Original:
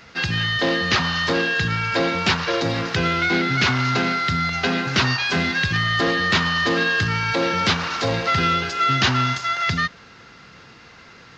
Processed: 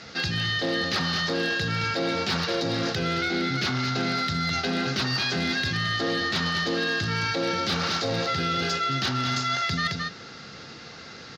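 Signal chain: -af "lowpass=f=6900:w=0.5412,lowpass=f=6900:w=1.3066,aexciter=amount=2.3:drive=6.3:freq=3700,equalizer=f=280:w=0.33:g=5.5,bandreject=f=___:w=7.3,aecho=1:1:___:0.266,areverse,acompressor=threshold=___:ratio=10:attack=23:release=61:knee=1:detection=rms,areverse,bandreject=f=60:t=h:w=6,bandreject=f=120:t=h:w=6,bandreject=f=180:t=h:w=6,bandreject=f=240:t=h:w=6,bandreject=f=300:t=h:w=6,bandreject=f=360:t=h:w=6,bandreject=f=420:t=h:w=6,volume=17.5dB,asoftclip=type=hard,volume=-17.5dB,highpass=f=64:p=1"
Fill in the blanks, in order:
1000, 218, -25dB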